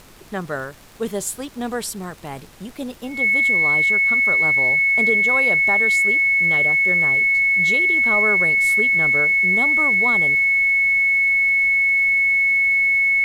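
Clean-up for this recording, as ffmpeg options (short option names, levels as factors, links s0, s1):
-af "adeclick=t=4,bandreject=f=2200:w=30,agate=range=0.0891:threshold=0.0447"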